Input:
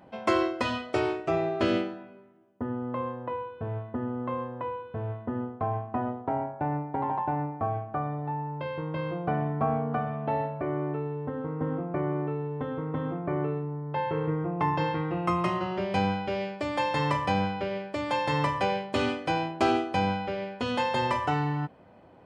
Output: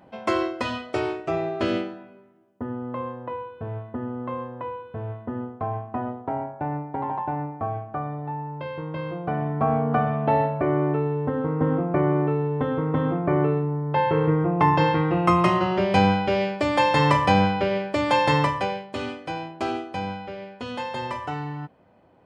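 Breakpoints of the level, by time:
0:09.29 +1 dB
0:10.02 +8 dB
0:18.29 +8 dB
0:18.86 −3.5 dB

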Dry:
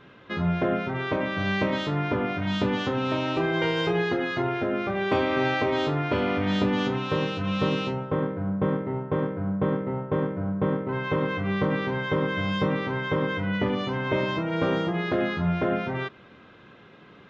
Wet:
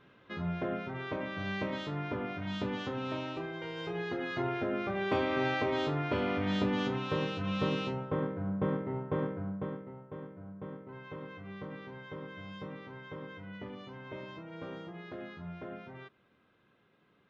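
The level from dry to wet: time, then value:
0:03.18 −10 dB
0:03.61 −16.5 dB
0:04.43 −6.5 dB
0:09.32 −6.5 dB
0:09.96 −18.5 dB

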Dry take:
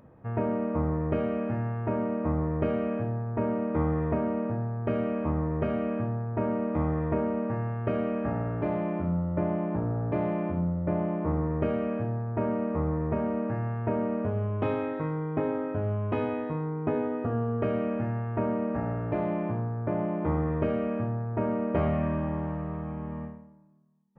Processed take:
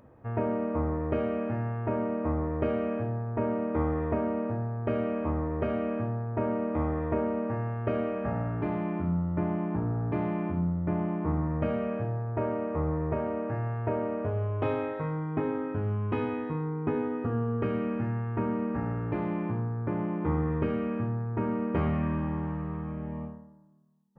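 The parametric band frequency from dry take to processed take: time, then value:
parametric band −14.5 dB 0.25 octaves
0:08.01 170 Hz
0:08.60 560 Hz
0:11.26 560 Hz
0:12.24 210 Hz
0:14.82 210 Hz
0:15.44 630 Hz
0:22.86 630 Hz
0:23.36 2,300 Hz

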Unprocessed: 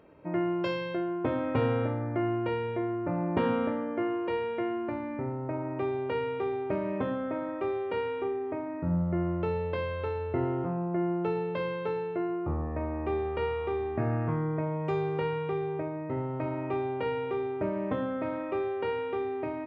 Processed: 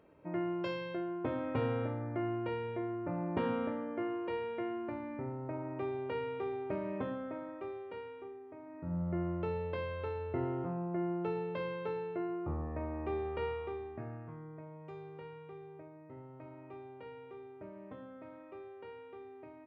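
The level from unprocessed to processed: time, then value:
0:07.00 −6.5 dB
0:08.50 −17.5 dB
0:09.08 −6 dB
0:13.49 −6 dB
0:14.27 −18 dB

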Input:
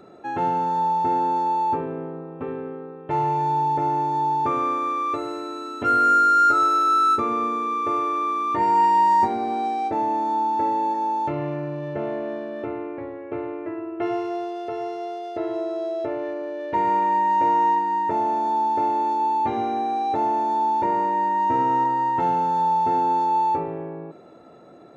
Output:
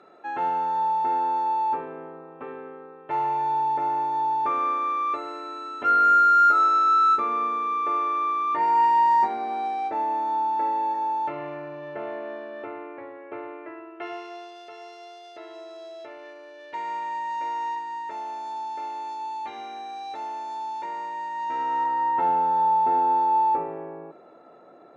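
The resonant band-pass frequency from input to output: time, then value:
resonant band-pass, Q 0.59
0:13.46 1,600 Hz
0:14.68 4,800 Hz
0:21.31 4,800 Hz
0:22.32 1,000 Hz

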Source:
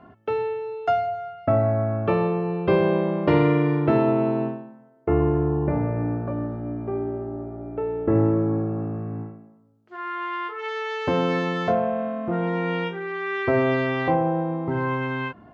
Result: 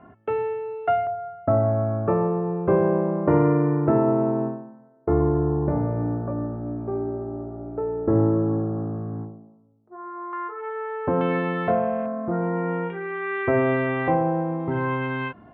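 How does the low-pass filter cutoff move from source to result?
low-pass filter 24 dB per octave
2,600 Hz
from 0:01.07 1,500 Hz
from 0:09.25 1,000 Hz
from 0:10.33 1,500 Hz
from 0:11.21 2,600 Hz
from 0:12.06 1,600 Hz
from 0:12.90 2,600 Hz
from 0:14.60 3,700 Hz

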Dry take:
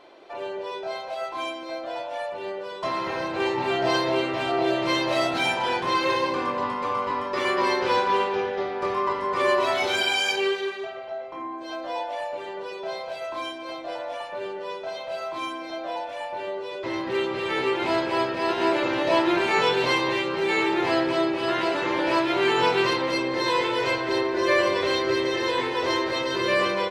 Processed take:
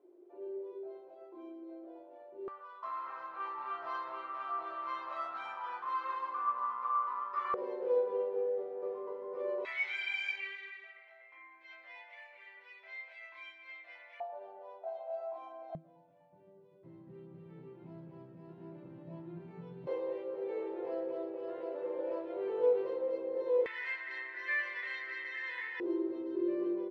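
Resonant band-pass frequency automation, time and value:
resonant band-pass, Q 11
360 Hz
from 0:02.48 1,200 Hz
from 0:07.54 480 Hz
from 0:09.65 2,100 Hz
from 0:14.20 720 Hz
from 0:15.75 160 Hz
from 0:19.87 490 Hz
from 0:23.66 1,900 Hz
from 0:25.80 350 Hz

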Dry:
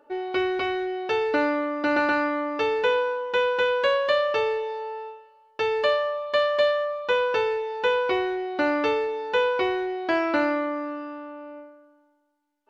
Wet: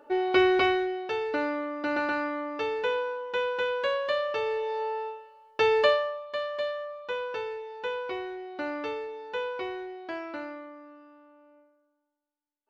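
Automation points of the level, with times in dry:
0:00.65 +3.5 dB
0:01.10 −6 dB
0:04.40 −6 dB
0:04.82 +2 dB
0:05.81 +2 dB
0:06.27 −10 dB
0:09.81 −10 dB
0:10.77 −17.5 dB

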